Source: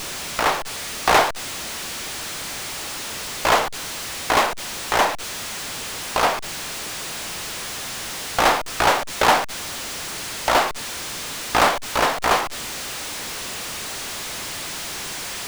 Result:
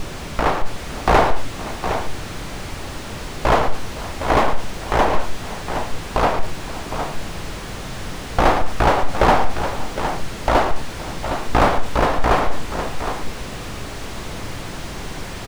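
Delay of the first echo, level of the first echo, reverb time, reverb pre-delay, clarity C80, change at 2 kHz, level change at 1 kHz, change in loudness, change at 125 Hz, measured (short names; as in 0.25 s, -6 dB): 0.111 s, -11.0 dB, none, none, none, -2.0 dB, +1.5 dB, +0.5 dB, +12.5 dB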